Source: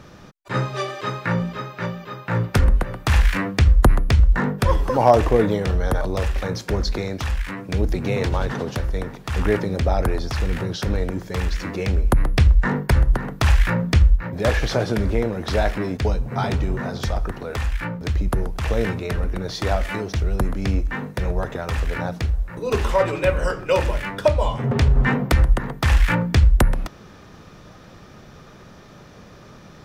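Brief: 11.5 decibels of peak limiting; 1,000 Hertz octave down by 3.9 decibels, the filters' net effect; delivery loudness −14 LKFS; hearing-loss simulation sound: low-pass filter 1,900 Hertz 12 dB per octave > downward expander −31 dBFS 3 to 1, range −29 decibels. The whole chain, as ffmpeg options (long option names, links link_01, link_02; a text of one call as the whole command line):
ffmpeg -i in.wav -af "equalizer=frequency=1000:width_type=o:gain=-5,alimiter=limit=-16dB:level=0:latency=1,lowpass=1900,agate=range=-29dB:threshold=-31dB:ratio=3,volume=12.5dB" out.wav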